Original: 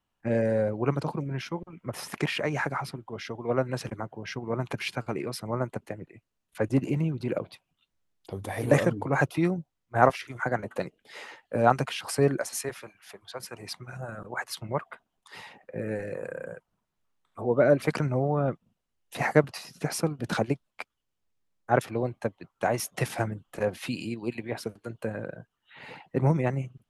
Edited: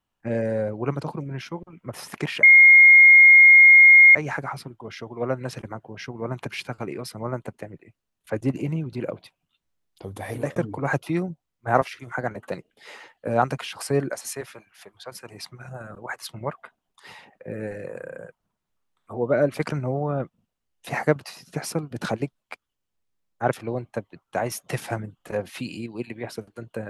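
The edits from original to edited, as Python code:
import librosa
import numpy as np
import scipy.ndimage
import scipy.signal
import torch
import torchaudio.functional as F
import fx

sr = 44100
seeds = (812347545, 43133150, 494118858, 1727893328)

y = fx.edit(x, sr, fx.insert_tone(at_s=2.43, length_s=1.72, hz=2140.0, db=-7.5),
    fx.fade_out_span(start_s=8.59, length_s=0.25), tone=tone)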